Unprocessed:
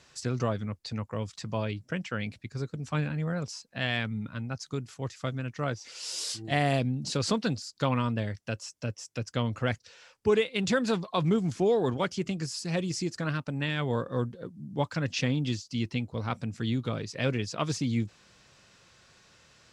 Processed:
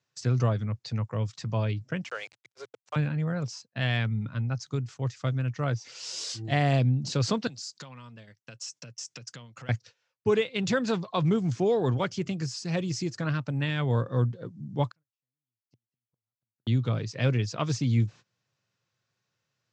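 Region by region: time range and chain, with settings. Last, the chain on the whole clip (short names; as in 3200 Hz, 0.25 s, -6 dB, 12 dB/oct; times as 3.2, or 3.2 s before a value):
2.04–2.96 steep high-pass 430 Hz + sample gate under -45 dBFS
7.47–9.69 compressor 10:1, threshold -40 dBFS + resonant high-pass 150 Hz, resonance Q 1.8 + tilt +3 dB/oct
14.91–16.67 compressor 3:1, threshold -37 dBFS + flipped gate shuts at -33 dBFS, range -40 dB
whole clip: gate -48 dBFS, range -22 dB; Chebyshev band-pass 100–6800 Hz, order 3; bell 120 Hz +8.5 dB 0.62 oct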